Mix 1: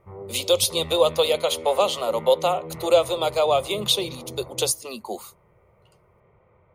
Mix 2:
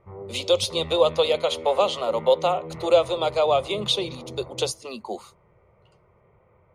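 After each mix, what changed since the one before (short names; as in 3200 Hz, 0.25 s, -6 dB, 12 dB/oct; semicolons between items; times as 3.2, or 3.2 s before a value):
master: add air absorption 79 m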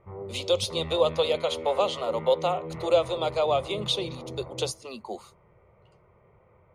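speech -4.0 dB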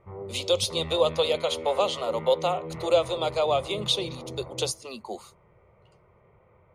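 master: add high shelf 4400 Hz +5.5 dB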